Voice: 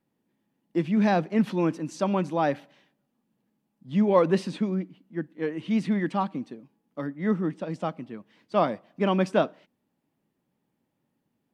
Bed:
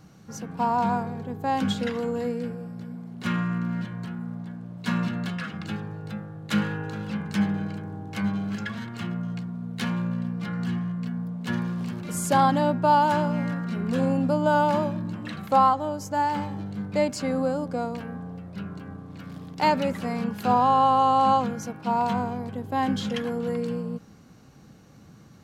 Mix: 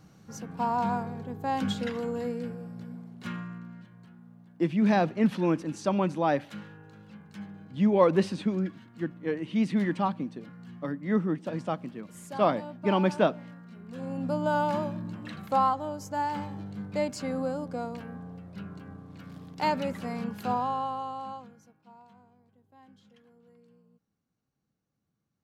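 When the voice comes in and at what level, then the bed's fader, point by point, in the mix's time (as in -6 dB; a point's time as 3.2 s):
3.85 s, -1.0 dB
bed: 2.96 s -4 dB
3.82 s -18 dB
13.86 s -18 dB
14.33 s -5.5 dB
20.39 s -5.5 dB
22.08 s -31.5 dB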